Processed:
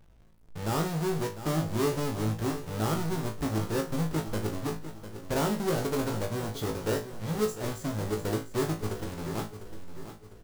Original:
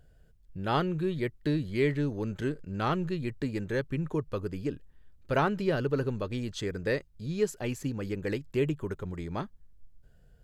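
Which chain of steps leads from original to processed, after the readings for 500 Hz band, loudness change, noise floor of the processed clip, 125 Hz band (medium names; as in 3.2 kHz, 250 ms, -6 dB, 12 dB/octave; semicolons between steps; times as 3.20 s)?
-0.5 dB, +0.5 dB, -53 dBFS, +1.0 dB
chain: square wave that keeps the level; dynamic bell 2.5 kHz, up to -6 dB, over -44 dBFS, Q 1; in parallel at +2 dB: peak limiter -22 dBFS, peak gain reduction 8 dB; on the sum: feedback comb 54 Hz, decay 0.26 s, harmonics all, mix 100%; feedback delay 701 ms, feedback 42%, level -12 dB; trim -3.5 dB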